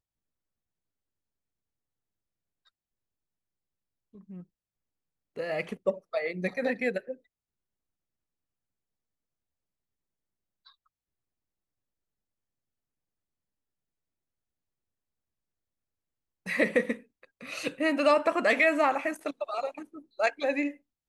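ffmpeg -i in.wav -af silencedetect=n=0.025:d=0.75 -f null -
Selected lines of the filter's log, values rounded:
silence_start: 0.00
silence_end: 5.38 | silence_duration: 5.38
silence_start: 7.12
silence_end: 16.47 | silence_duration: 9.35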